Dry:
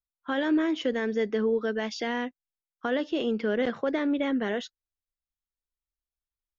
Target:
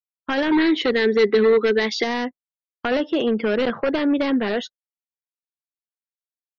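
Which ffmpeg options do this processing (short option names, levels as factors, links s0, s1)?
-filter_complex "[0:a]agate=range=0.0224:threshold=0.00794:ratio=3:detection=peak,equalizer=f=1000:w=1:g=2.5,aeval=exprs='0.0891*(abs(mod(val(0)/0.0891+3,4)-2)-1)':c=same,asettb=1/sr,asplit=3[s0][s1][s2];[s0]atrim=end=0.524[s3];[s1]atrim=start=0.52:end=2.04,asetpts=PTS-STARTPTS,afade=t=in:d=0.004:c=qsin,afade=t=out:st=1.516:d=0.004:c=qsin,equalizer=f=400:t=o:w=0.33:g=10,equalizer=f=630:t=o:w=0.33:g=-6,equalizer=f=2000:t=o:w=0.33:g=9,equalizer=f=4000:t=o:w=0.33:g=10[s4];[s2]atrim=start=2.036[s5];[s3][s4]acrossfade=d=0.004:c1=hsin:c2=qsin[s6];[s6][s5]acrossfade=d=0.004:c1=qsin:c2=hsin,afftdn=nr=27:nf=-47,volume=2.24"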